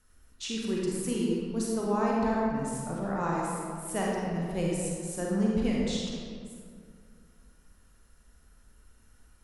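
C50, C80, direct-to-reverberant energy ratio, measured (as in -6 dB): -2.0 dB, 0.0 dB, -4.0 dB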